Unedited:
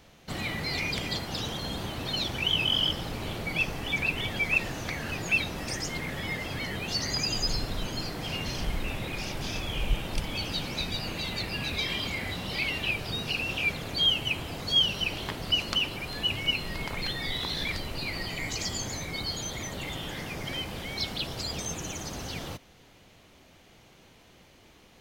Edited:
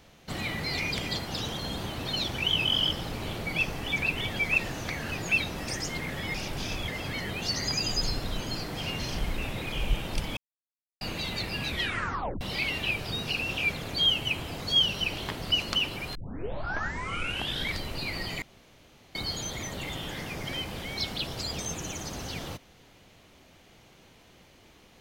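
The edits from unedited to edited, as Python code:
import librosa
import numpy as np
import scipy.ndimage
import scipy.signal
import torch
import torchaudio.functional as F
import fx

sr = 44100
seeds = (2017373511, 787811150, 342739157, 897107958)

y = fx.edit(x, sr, fx.move(start_s=9.18, length_s=0.54, to_s=6.34),
    fx.silence(start_s=10.37, length_s=0.64),
    fx.tape_stop(start_s=11.69, length_s=0.72),
    fx.tape_start(start_s=16.15, length_s=1.59),
    fx.room_tone_fill(start_s=18.42, length_s=0.73), tone=tone)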